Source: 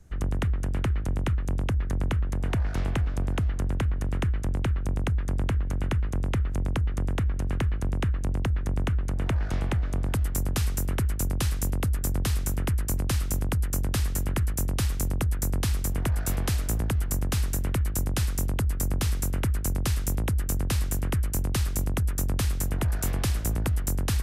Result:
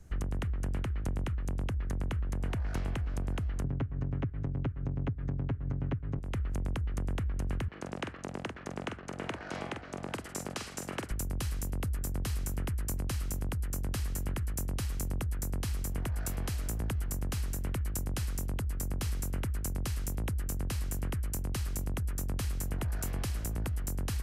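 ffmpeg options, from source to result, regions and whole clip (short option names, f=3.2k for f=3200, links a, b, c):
-filter_complex "[0:a]asettb=1/sr,asplit=3[a][b][c];[a]atrim=end=3.644[d];[b]atrim=start=3.64:end=6.19,asetpts=PTS-STARTPTS,afade=t=in:d=0.004:c=qsin,afade=t=out:st=2.546:d=0.004:c=qsin,highpass=100,lowpass=4.5k,aemphasis=mode=reproduction:type=riaa,aecho=1:1:7.3:1,atrim=end_sample=112455[e];[c]atrim=start=6.186[f];[d][e]acrossfade=d=0.004:c1=hsin:c2=qsin[g];[g][f]acrossfade=d=0.004:c1=qsin:c2=hsin,asettb=1/sr,asplit=3[h][i][j];[h]atrim=end=7.684[k];[i]atrim=start=7.68:end=11.11,asetpts=PTS-STARTPTS,afade=t=in:d=0.004:c=qsin,afade=t=out:st=3.426:d=0.004:c=qsin,asplit=2[l][m];[m]adelay=45,volume=-7dB[n];[l][n]amix=inputs=2:normalize=0,atrim=end_sample=151263,aeval=exprs='sgn(val(0))*max(abs(val(0))-0.00398,0)':c=same,highpass=270,lowpass=7.2k[o];[j]atrim=start=11.106[p];[k][o]acrossfade=d=0.004:c1=hsin:c2=qsin[q];[q][p]acrossfade=d=0.004:c1=qsin:c2=hsin,acompressor=threshold=-26dB:ratio=6,bandreject=f=3.6k:w=20,alimiter=level_in=0.5dB:limit=-24dB:level=0:latency=1:release=390,volume=-0.5dB"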